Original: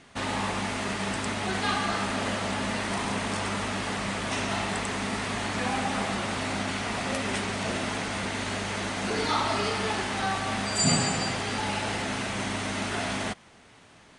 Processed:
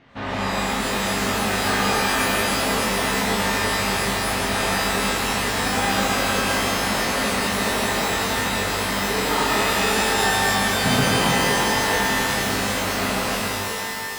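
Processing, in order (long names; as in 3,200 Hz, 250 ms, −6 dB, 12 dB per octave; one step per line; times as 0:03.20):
high-frequency loss of the air 250 metres
reverb with rising layers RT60 2.7 s, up +12 semitones, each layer −2 dB, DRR −5.5 dB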